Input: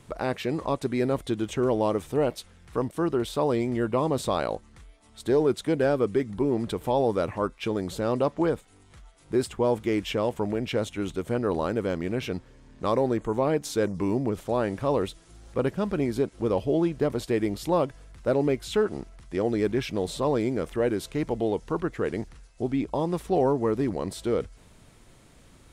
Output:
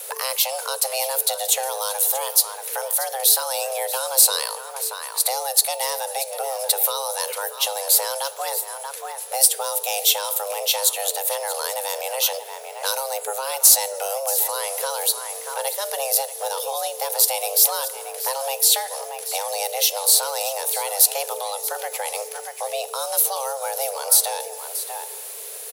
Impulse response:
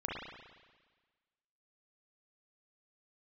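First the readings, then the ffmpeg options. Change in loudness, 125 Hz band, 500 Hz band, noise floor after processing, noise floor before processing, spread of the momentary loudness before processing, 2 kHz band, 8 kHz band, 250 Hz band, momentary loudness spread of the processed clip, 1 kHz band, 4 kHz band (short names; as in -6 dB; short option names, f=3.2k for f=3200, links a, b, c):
+6.5 dB, under -35 dB, -3.0 dB, -35 dBFS, -55 dBFS, 7 LU, +5.5 dB, +26.5 dB, under -35 dB, 12 LU, +5.5 dB, +16.5 dB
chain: -filter_complex "[0:a]crystalizer=i=7:c=0,aecho=1:1:632:0.178,asplit=2[a][b];[1:a]atrim=start_sample=2205,afade=t=out:st=0.37:d=0.01,atrim=end_sample=16758[c];[b][c]afir=irnorm=-1:irlink=0,volume=-20dB[d];[a][d]amix=inputs=2:normalize=0,aexciter=amount=1.5:drive=9.8:freq=10k,acrossover=split=140|3000[e][f][g];[f]acompressor=threshold=-36dB:ratio=5[h];[e][h][g]amix=inputs=3:normalize=0,afreqshift=400,acontrast=60,bandreject=f=295.9:t=h:w=4,bandreject=f=591.8:t=h:w=4,bandreject=f=887.7:t=h:w=4,bandreject=f=1.1836k:t=h:w=4,bandreject=f=1.4795k:t=h:w=4,bandreject=f=1.7754k:t=h:w=4,bandreject=f=2.0713k:t=h:w=4,bandreject=f=2.3672k:t=h:w=4,bandreject=f=2.6631k:t=h:w=4,bandreject=f=2.959k:t=h:w=4,bandreject=f=3.2549k:t=h:w=4,bandreject=f=3.5508k:t=h:w=4,bandreject=f=3.8467k:t=h:w=4,bandreject=f=4.1426k:t=h:w=4,bandreject=f=4.4385k:t=h:w=4,bandreject=f=4.7344k:t=h:w=4,bandreject=f=5.0303k:t=h:w=4,bandreject=f=5.3262k:t=h:w=4,bandreject=f=5.6221k:t=h:w=4,bandreject=f=5.918k:t=h:w=4,bandreject=f=6.2139k:t=h:w=4,bandreject=f=6.5098k:t=h:w=4,bandreject=f=6.8057k:t=h:w=4,bandreject=f=7.1016k:t=h:w=4,bandreject=f=7.3975k:t=h:w=4,bandreject=f=7.6934k:t=h:w=4,bandreject=f=7.9893k:t=h:w=4,bandreject=f=8.2852k:t=h:w=4,bandreject=f=8.5811k:t=h:w=4,bandreject=f=8.877k:t=h:w=4,bandreject=f=9.1729k:t=h:w=4,bandreject=f=9.4688k:t=h:w=4,bandreject=f=9.7647k:t=h:w=4,bandreject=f=10.0606k:t=h:w=4,bandreject=f=10.3565k:t=h:w=4,bandreject=f=10.6524k:t=h:w=4,bandreject=f=10.9483k:t=h:w=4,bandreject=f=11.2442k:t=h:w=4"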